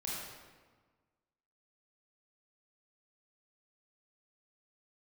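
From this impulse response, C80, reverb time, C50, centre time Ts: 0.5 dB, 1.4 s, -2.5 dB, 0.101 s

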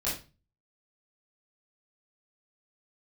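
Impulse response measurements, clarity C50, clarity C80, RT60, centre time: 4.5 dB, 11.5 dB, 0.30 s, 36 ms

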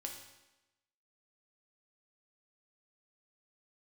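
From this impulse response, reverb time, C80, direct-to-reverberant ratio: 1.0 s, 8.0 dB, 1.5 dB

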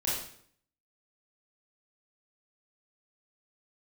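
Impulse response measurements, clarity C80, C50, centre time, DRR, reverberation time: 5.0 dB, 0.5 dB, 57 ms, -7.5 dB, 0.60 s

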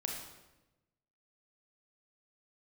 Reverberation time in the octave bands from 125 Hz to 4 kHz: 1.4, 1.3, 1.1, 0.95, 0.90, 0.80 s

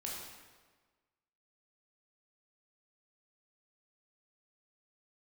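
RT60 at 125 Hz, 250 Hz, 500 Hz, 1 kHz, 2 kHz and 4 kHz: 1.4, 1.4, 1.5, 1.4, 1.3, 1.1 s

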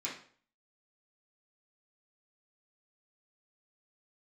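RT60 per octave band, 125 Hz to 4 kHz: 0.50, 0.50, 0.50, 0.45, 0.45, 0.40 s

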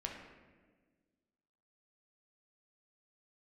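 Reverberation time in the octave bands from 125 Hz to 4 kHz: 1.9, 2.0, 1.7, 1.2, 1.3, 0.95 s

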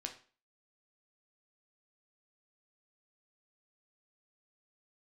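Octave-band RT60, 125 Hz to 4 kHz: 0.35, 0.40, 0.40, 0.40, 0.40, 0.35 s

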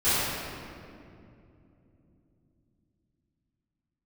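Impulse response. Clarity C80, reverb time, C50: -3.0 dB, 2.7 s, -5.5 dB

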